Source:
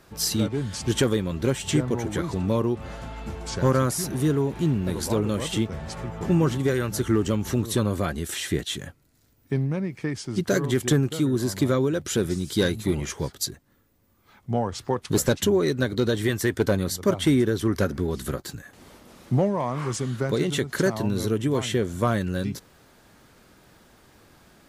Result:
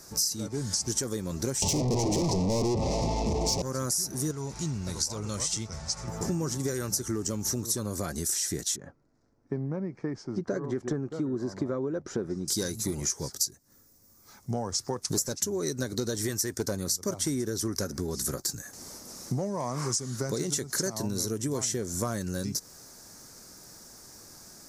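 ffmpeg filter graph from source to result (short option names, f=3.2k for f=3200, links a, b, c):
-filter_complex "[0:a]asettb=1/sr,asplit=3[a][b][c];[a]atrim=end=1.624[d];[b]atrim=start=1.62:end=3.62,asetpts=PTS-STARTPTS,afade=t=in:d=0.004:c=qsin,afade=t=out:st=1.996:d=0.004:c=qsin,aemphasis=mode=reproduction:type=riaa,asplit=2[e][f];[f]highpass=f=720:p=1,volume=43dB,asoftclip=type=tanh:threshold=-2dB[g];[e][g]amix=inputs=2:normalize=0,lowpass=f=2.6k:p=1,volume=-6dB,asuperstop=centerf=1500:order=4:qfactor=1[h];[c]atrim=start=3.616[i];[d][h]acrossfade=d=0.004:c1=hsin:c2=qsin[j];[j][i]acrossfade=d=0.004:c1=qsin:c2=hsin,asettb=1/sr,asplit=3[k][l][m];[k]atrim=end=4.314[n];[l]atrim=start=4.31:end=6.08,asetpts=PTS-STARTPTS,afade=t=in:d=0.004:c=qsin,afade=t=out:st=1.766:d=0.004:c=qsin,lowpass=7k,equalizer=f=330:t=o:w=2.3:g=-11.5,bandreject=f=1.7k:w=11[o];[m]atrim=start=6.076[p];[n][o]acrossfade=d=0.004:c1=hsin:c2=qsin[q];[q][p]acrossfade=d=0.004:c1=qsin:c2=hsin,asettb=1/sr,asplit=3[r][s][t];[r]atrim=end=8.764[u];[s]atrim=start=8.76:end=12.48,asetpts=PTS-STARTPTS,afade=t=in:d=0.004:c=qsin,afade=t=out:st=3.716:d=0.004:c=qsin,lowpass=1.3k,equalizer=f=82:t=o:w=2:g=-8.5[v];[t]atrim=start=12.476[w];[u][v]acrossfade=d=0.004:c1=hsin:c2=qsin[x];[x][w]acrossfade=d=0.004:c1=qsin:c2=hsin,highshelf=f=4.2k:t=q:w=3:g=10.5,acompressor=threshold=-27dB:ratio=6,equalizer=f=60:t=o:w=1.2:g=-3.5"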